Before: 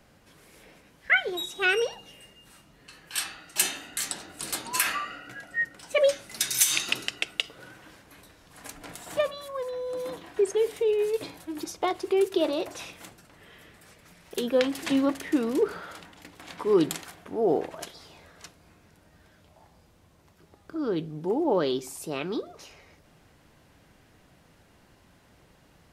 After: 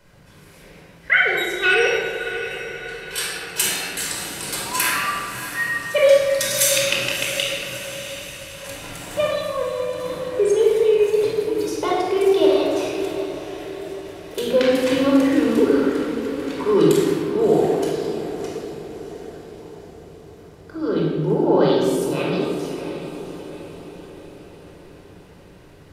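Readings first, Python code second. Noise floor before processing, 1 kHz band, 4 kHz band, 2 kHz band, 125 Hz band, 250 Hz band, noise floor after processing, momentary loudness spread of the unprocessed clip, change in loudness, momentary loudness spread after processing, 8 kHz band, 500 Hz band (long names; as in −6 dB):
−60 dBFS, +8.0 dB, +7.0 dB, +8.5 dB, +13.5 dB, +9.5 dB, −46 dBFS, 17 LU, +7.5 dB, 17 LU, +5.5 dB, +9.5 dB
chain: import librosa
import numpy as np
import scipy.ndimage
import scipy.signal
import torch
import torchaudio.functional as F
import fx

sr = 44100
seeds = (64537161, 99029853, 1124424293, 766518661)

y = fx.echo_diffused(x, sr, ms=655, feedback_pct=54, wet_db=-11.0)
y = fx.room_shoebox(y, sr, seeds[0], volume_m3=2400.0, walls='mixed', distance_m=4.9)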